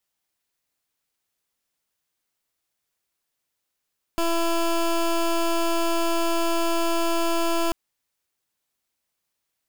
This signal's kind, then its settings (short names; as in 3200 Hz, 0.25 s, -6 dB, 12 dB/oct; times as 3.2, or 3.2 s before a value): pulse 335 Hz, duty 17% -22 dBFS 3.54 s